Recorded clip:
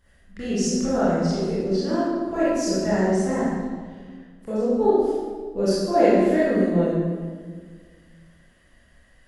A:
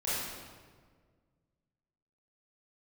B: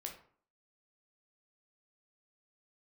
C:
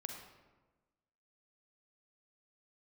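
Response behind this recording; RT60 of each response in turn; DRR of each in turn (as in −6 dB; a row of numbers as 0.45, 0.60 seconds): A; 1.7, 0.50, 1.2 seconds; −11.0, 1.5, 2.5 decibels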